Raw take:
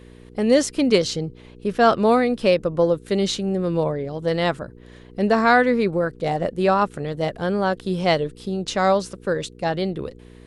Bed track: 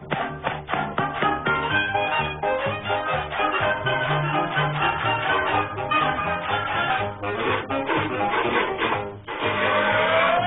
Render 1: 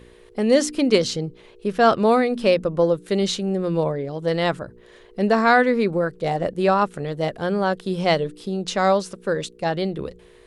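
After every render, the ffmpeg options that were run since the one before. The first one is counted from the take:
-af "bandreject=f=60:t=h:w=4,bandreject=f=120:t=h:w=4,bandreject=f=180:t=h:w=4,bandreject=f=240:t=h:w=4,bandreject=f=300:t=h:w=4"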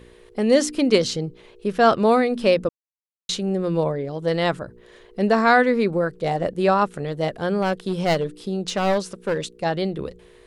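-filter_complex "[0:a]asettb=1/sr,asplit=3[s0][s1][s2];[s0]atrim=end=7.624[s3];[s1]atrim=start=7.62:end=9.54,asetpts=PTS-STARTPTS,afade=t=in:d=0.004:c=qsin,afade=t=out:st=1.916:d=0.004:c=qsin,aeval=exprs='clip(val(0),-1,0.112)':c=same[s4];[s2]atrim=start=9.536[s5];[s3][s4]acrossfade=d=0.004:c1=hsin:c2=qsin[s6];[s6][s5]acrossfade=d=0.004:c1=qsin:c2=hsin,asplit=3[s7][s8][s9];[s7]atrim=end=2.69,asetpts=PTS-STARTPTS,afade=t=out:st=2.686:d=0.004:c=hsin[s10];[s8]atrim=start=2.69:end=3.29,asetpts=PTS-STARTPTS,volume=0[s11];[s9]atrim=start=3.29,asetpts=PTS-STARTPTS,afade=t=in:d=0.004:c=hsin[s12];[s10][s11][s12]concat=n=3:v=0:a=1"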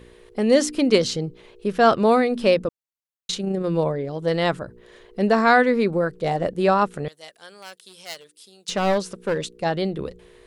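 -filter_complex "[0:a]asettb=1/sr,asplit=3[s0][s1][s2];[s0]atrim=end=2.584[s3];[s1]atrim=start=2.58:end=3.65,asetpts=PTS-STARTPTS,afade=t=in:d=0.004:c=qsin,afade=t=out:st=1.066:d=0.004:c=qsin,tremolo=f=29:d=0.333[s4];[s2]atrim=start=3.646[s5];[s3][s4]acrossfade=d=0.004:c1=hsin:c2=qsin[s6];[s6][s5]acrossfade=d=0.004:c1=qsin:c2=hsin,asettb=1/sr,asplit=3[s7][s8][s9];[s7]atrim=end=7.084[s10];[s8]atrim=start=7.08:end=8.69,asetpts=PTS-STARTPTS,afade=t=in:d=0.004:c=qsin,afade=t=out:st=1.606:d=0.004:c=qsin,aderivative[s11];[s9]atrim=start=8.686[s12];[s10][s11]acrossfade=d=0.004:c1=hsin:c2=qsin[s13];[s13][s12]acrossfade=d=0.004:c1=qsin:c2=hsin"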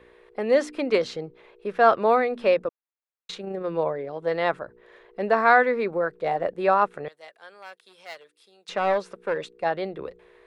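-filter_complex "[0:a]acrossover=split=410 3000:gain=0.2 1 0.141[s0][s1][s2];[s0][s1][s2]amix=inputs=3:normalize=0,bandreject=f=3000:w=13"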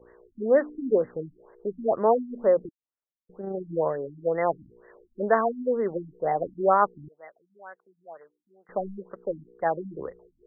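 -af "afftfilt=real='re*lt(b*sr/1024,290*pow(2100/290,0.5+0.5*sin(2*PI*2.1*pts/sr)))':imag='im*lt(b*sr/1024,290*pow(2100/290,0.5+0.5*sin(2*PI*2.1*pts/sr)))':win_size=1024:overlap=0.75"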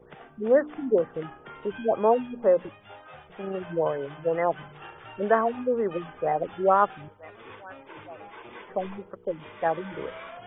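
-filter_complex "[1:a]volume=0.075[s0];[0:a][s0]amix=inputs=2:normalize=0"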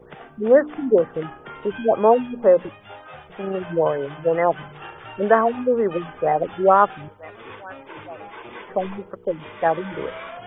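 -af "volume=2,alimiter=limit=0.794:level=0:latency=1"

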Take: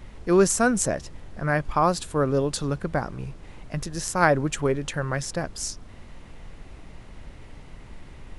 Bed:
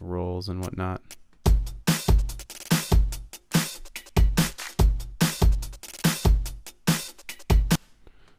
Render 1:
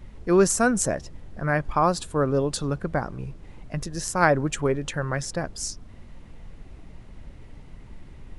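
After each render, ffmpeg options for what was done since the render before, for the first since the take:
-af "afftdn=nr=6:nf=-45"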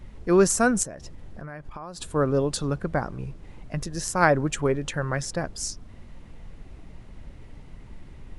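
-filter_complex "[0:a]asettb=1/sr,asplit=3[s0][s1][s2];[s0]atrim=end=0.834[s3];[s1]atrim=start=0.83:end=2.01,asetpts=PTS-STARTPTS,afade=t=in:d=0.004:c=qsin,afade=t=out:st=1.176:d=0.004:c=qsin,acompressor=threshold=0.02:ratio=10:attack=3.2:release=140:knee=1:detection=peak[s4];[s2]atrim=start=2.006[s5];[s3][s4]acrossfade=d=0.004:c1=hsin:c2=qsin[s6];[s6][s5]acrossfade=d=0.004:c1=qsin:c2=hsin"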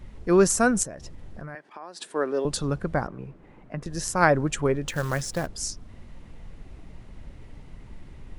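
-filter_complex "[0:a]asettb=1/sr,asplit=3[s0][s1][s2];[s0]atrim=end=1.554[s3];[s1]atrim=start=1.55:end=2.45,asetpts=PTS-STARTPTS,afade=t=in:d=0.004:c=qsin,afade=t=out:st=0.896:d=0.004:c=qsin,highpass=f=270:w=0.5412,highpass=f=270:w=1.3066,equalizer=f=280:t=q:w=4:g=-4,equalizer=f=530:t=q:w=4:g=-4,equalizer=f=1200:t=q:w=4:g=-5,equalizer=f=1800:t=q:w=4:g=6,equalizer=f=7100:t=q:w=4:g=-5,lowpass=f=9600:w=0.5412,lowpass=f=9600:w=1.3066[s4];[s2]atrim=start=2.446[s5];[s3][s4]acrossfade=d=0.004:c1=hsin:c2=qsin[s6];[s6][s5]acrossfade=d=0.004:c1=qsin:c2=hsin,asettb=1/sr,asplit=3[s7][s8][s9];[s7]atrim=end=3.074[s10];[s8]atrim=start=3.07:end=3.86,asetpts=PTS-STARTPTS,afade=t=in:d=0.004:c=qsin,afade=t=out:st=0.786:d=0.004:c=qsin,acrossover=split=150 2400:gain=0.224 1 0.178[s11][s12][s13];[s11][s12][s13]amix=inputs=3:normalize=0[s14];[s9]atrim=start=3.856[s15];[s10][s14]acrossfade=d=0.004:c1=hsin:c2=qsin[s16];[s16][s15]acrossfade=d=0.004:c1=qsin:c2=hsin,asettb=1/sr,asplit=3[s17][s18][s19];[s17]atrim=end=4.884[s20];[s18]atrim=start=4.88:end=5.47,asetpts=PTS-STARTPTS,afade=t=in:d=0.004:c=qsin,afade=t=out:st=0.586:d=0.004:c=qsin,acrusher=bits=4:mode=log:mix=0:aa=0.000001[s21];[s19]atrim=start=5.466[s22];[s20][s21]acrossfade=d=0.004:c1=hsin:c2=qsin[s23];[s23][s22]acrossfade=d=0.004:c1=qsin:c2=hsin"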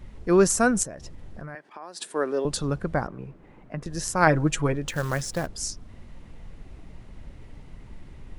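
-filter_complex "[0:a]asettb=1/sr,asplit=3[s0][s1][s2];[s0]atrim=end=1.824[s3];[s1]atrim=start=1.82:end=2.35,asetpts=PTS-STARTPTS,afade=t=in:d=0.004:c=qsin,afade=t=out:st=0.526:d=0.004:c=qsin,highshelf=f=6900:g=8[s4];[s2]atrim=start=2.346[s5];[s3][s4]acrossfade=d=0.004:c1=hsin:c2=qsin[s6];[s6][s5]acrossfade=d=0.004:c1=qsin:c2=hsin,asettb=1/sr,asplit=3[s7][s8][s9];[s7]atrim=end=4.264[s10];[s8]atrim=start=4.26:end=4.73,asetpts=PTS-STARTPTS,afade=t=in:d=0.004:c=qsin,afade=t=out:st=0.466:d=0.004:c=qsin,aecho=1:1:6.2:0.64,atrim=end_sample=20727[s11];[s9]atrim=start=4.726[s12];[s10][s11]acrossfade=d=0.004:c1=hsin:c2=qsin[s13];[s13][s12]acrossfade=d=0.004:c1=qsin:c2=hsin"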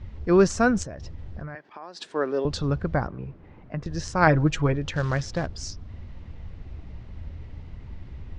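-af "lowpass=f=5600:w=0.5412,lowpass=f=5600:w=1.3066,equalizer=f=79:t=o:w=1:g=12"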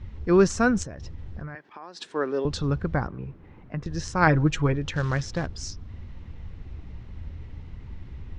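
-af "equalizer=f=630:t=o:w=0.46:g=-5,bandreject=f=4700:w=25"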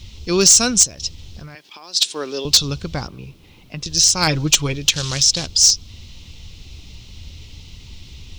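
-af "aexciter=amount=15.8:drive=5.6:freq=2700,volume=1.88,asoftclip=hard,volume=0.531"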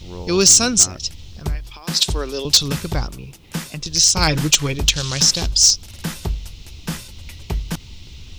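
-filter_complex "[1:a]volume=0.631[s0];[0:a][s0]amix=inputs=2:normalize=0"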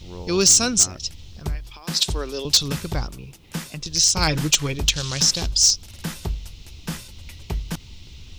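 -af "volume=0.668"

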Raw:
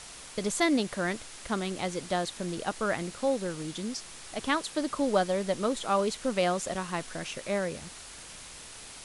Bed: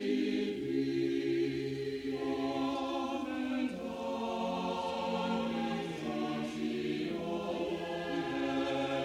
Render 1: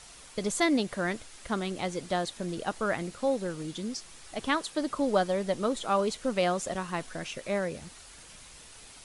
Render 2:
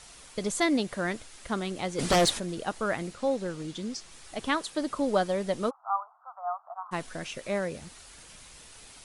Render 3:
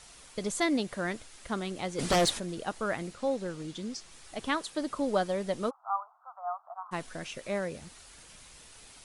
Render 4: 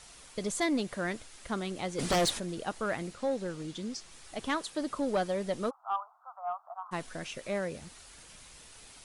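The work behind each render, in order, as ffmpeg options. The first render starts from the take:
-af "afftdn=nr=6:nf=-46"
-filter_complex "[0:a]asplit=3[s0][s1][s2];[s0]afade=t=out:st=1.98:d=0.02[s3];[s1]aeval=exprs='0.133*sin(PI/2*3.16*val(0)/0.133)':c=same,afade=t=in:st=1.98:d=0.02,afade=t=out:st=2.38:d=0.02[s4];[s2]afade=t=in:st=2.38:d=0.02[s5];[s3][s4][s5]amix=inputs=3:normalize=0,asettb=1/sr,asplit=3[s6][s7][s8];[s6]atrim=end=3.134[s9];[s7]atrim=start=3.13:end=4.12,asetpts=PTS-STARTPTS,afade=t=in:d=0.004:c=qsin,afade=t=out:st=0.986:d=0.004:c=qsin,lowpass=8700[s10];[s8]atrim=start=4.116[s11];[s9][s10]acrossfade=d=0.004:c1=hsin:c2=qsin[s12];[s12][s11]acrossfade=d=0.004:c1=qsin:c2=hsin,asplit=3[s13][s14][s15];[s13]afade=t=out:st=5.69:d=0.02[s16];[s14]asuperpass=centerf=970:order=12:qfactor=1.5,afade=t=in:st=5.69:d=0.02,afade=t=out:st=6.91:d=0.02[s17];[s15]afade=t=in:st=6.91:d=0.02[s18];[s16][s17][s18]amix=inputs=3:normalize=0"
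-af "volume=0.75"
-af "asoftclip=type=tanh:threshold=0.0891"

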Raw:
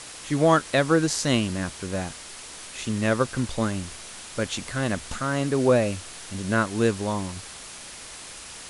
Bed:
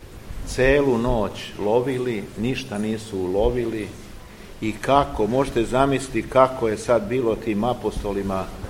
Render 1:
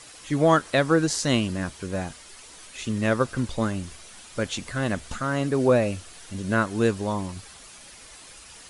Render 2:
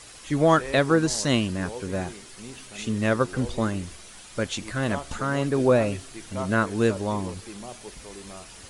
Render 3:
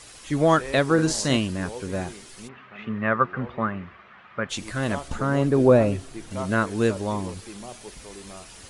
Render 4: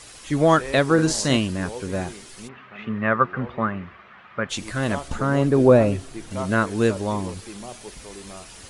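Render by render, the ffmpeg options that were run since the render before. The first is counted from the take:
-af "afftdn=nr=8:nf=-41"
-filter_complex "[1:a]volume=0.126[s0];[0:a][s0]amix=inputs=2:normalize=0"
-filter_complex "[0:a]asettb=1/sr,asplit=3[s0][s1][s2];[s0]atrim=end=0.944[s3];[s1]atrim=start=0.94:end=1.37,asetpts=PTS-STARTPTS,afade=t=in:d=0.004:c=qsin,afade=t=out:st=0.426:d=0.004:c=qsin,asplit=2[s4][s5];[s5]adelay=44,volume=0.398[s6];[s4][s6]amix=inputs=2:normalize=0,atrim=end_sample=18963[s7];[s2]atrim=start=1.366[s8];[s3][s7]acrossfade=d=0.004:c1=hsin:c2=qsin[s9];[s9][s8]acrossfade=d=0.004:c1=qsin:c2=hsin,asplit=3[s10][s11][s12];[s10]afade=t=out:st=2.47:d=0.02[s13];[s11]highpass=130,equalizer=f=300:t=q:w=4:g=-10,equalizer=f=480:t=q:w=4:g=-4,equalizer=f=1200:t=q:w=4:g=9,equalizer=f=1800:t=q:w=4:g=4,lowpass=f=2400:w=0.5412,lowpass=f=2400:w=1.3066,afade=t=in:st=2.47:d=0.02,afade=t=out:st=4.49:d=0.02[s14];[s12]afade=t=in:st=4.49:d=0.02[s15];[s13][s14][s15]amix=inputs=3:normalize=0,asettb=1/sr,asplit=3[s16][s17][s18];[s16]atrim=end=5.084[s19];[s17]atrim=start=5.08:end=6.31,asetpts=PTS-STARTPTS,afade=t=in:d=0.004:c=qsin,afade=t=out:st=1.226:d=0.004:c=qsin,tiltshelf=f=1300:g=4.5[s20];[s18]atrim=start=6.306[s21];[s19][s20]acrossfade=d=0.004:c1=hsin:c2=qsin[s22];[s22][s21]acrossfade=d=0.004:c1=qsin:c2=hsin"
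-af "volume=1.26"

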